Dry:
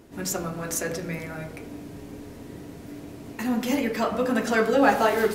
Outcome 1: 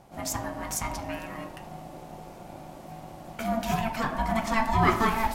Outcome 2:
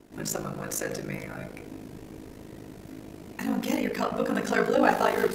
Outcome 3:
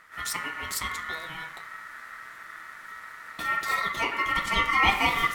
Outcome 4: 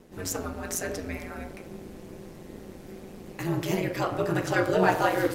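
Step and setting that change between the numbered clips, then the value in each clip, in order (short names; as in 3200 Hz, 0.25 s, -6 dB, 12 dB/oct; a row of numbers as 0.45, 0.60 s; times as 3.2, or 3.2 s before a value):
ring modulator, frequency: 450, 26, 1600, 90 Hz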